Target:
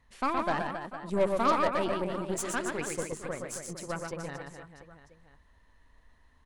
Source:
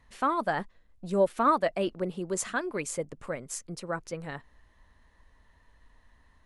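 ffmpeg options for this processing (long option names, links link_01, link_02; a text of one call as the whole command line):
ffmpeg -i in.wav -af "aecho=1:1:120|270|457.5|691.9|984.8:0.631|0.398|0.251|0.158|0.1,aeval=exprs='0.299*(cos(1*acos(clip(val(0)/0.299,-1,1)))-cos(1*PI/2))+0.0237*(cos(8*acos(clip(val(0)/0.299,-1,1)))-cos(8*PI/2))':channel_layout=same,volume=-3.5dB" out.wav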